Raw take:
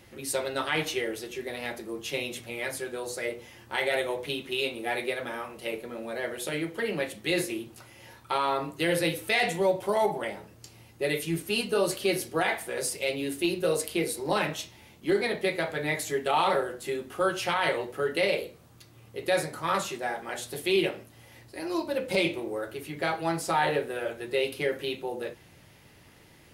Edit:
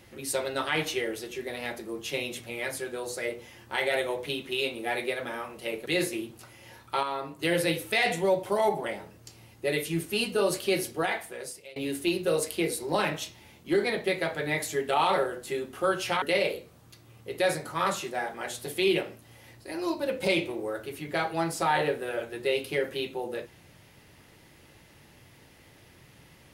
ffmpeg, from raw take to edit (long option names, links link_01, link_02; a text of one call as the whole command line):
ffmpeg -i in.wav -filter_complex "[0:a]asplit=6[link_01][link_02][link_03][link_04][link_05][link_06];[link_01]atrim=end=5.862[link_07];[link_02]atrim=start=7.228:end=8.402[link_08];[link_03]atrim=start=8.398:end=8.762,asetpts=PTS-STARTPTS,volume=-5.5dB[link_09];[link_04]atrim=start=8.758:end=13.13,asetpts=PTS-STARTPTS,afade=type=out:start_time=3.482:duration=0.89:silence=0.0630957[link_10];[link_05]atrim=start=13.13:end=17.592,asetpts=PTS-STARTPTS,afade=type=in:duration=0.004:curve=hsin:silence=0.0630957[link_11];[link_06]atrim=start=18.098[link_12];[link_07][link_08]acrossfade=duration=0.004:curve1=hsin:curve2=hsin[link_13];[link_13][link_09]acrossfade=duration=0.004:curve1=hsin:curve2=hsin[link_14];[link_10][link_11]concat=n=2:v=0:a=1[link_15];[link_14][link_15]acrossfade=duration=0.004:curve1=hsin:curve2=hsin[link_16];[link_16][link_12]acrossfade=duration=0.004:curve1=hsin:curve2=hsin" out.wav